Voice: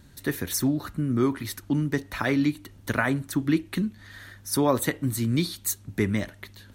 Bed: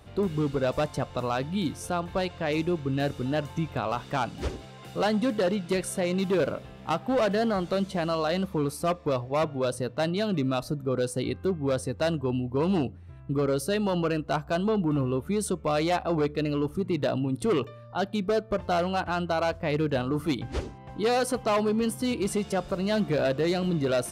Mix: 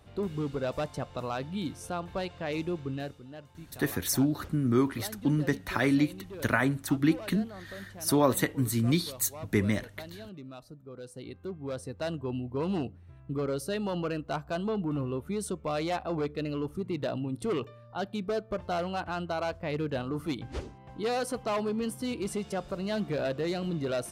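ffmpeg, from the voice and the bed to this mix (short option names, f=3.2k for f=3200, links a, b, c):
-filter_complex "[0:a]adelay=3550,volume=-1.5dB[a];[1:a]volume=7dB,afade=t=out:st=2.86:d=0.35:silence=0.237137,afade=t=in:st=10.95:d=1.44:silence=0.237137[b];[a][b]amix=inputs=2:normalize=0"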